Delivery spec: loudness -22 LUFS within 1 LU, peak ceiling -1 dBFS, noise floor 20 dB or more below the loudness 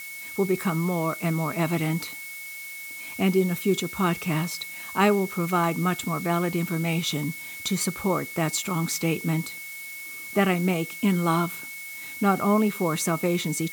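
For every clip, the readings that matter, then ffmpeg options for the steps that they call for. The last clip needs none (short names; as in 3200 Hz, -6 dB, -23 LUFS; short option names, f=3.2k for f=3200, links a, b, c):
steady tone 2200 Hz; tone level -37 dBFS; noise floor -38 dBFS; noise floor target -46 dBFS; loudness -26.0 LUFS; peak -8.0 dBFS; loudness target -22.0 LUFS
-> -af "bandreject=f=2.2k:w=30"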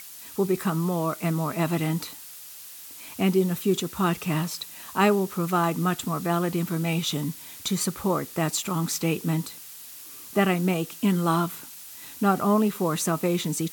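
steady tone none; noise floor -43 dBFS; noise floor target -46 dBFS
-> -af "afftdn=nr=6:nf=-43"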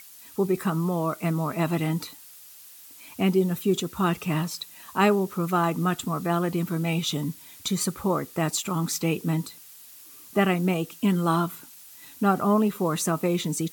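noise floor -48 dBFS; loudness -26.0 LUFS; peak -9.0 dBFS; loudness target -22.0 LUFS
-> -af "volume=4dB"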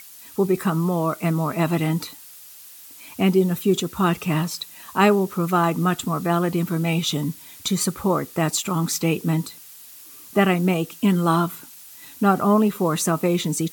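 loudness -22.0 LUFS; peak -5.0 dBFS; noise floor -44 dBFS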